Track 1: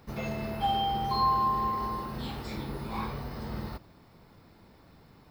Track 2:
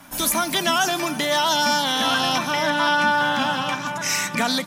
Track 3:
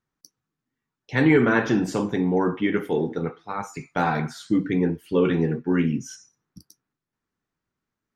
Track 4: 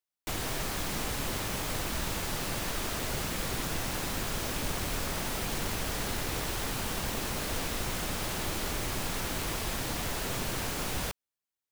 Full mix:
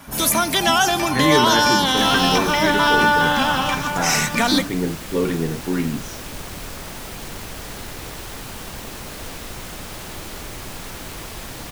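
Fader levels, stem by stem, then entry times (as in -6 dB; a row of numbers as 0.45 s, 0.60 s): +1.5 dB, +3.0 dB, -1.0 dB, 0.0 dB; 0.00 s, 0.00 s, 0.00 s, 1.70 s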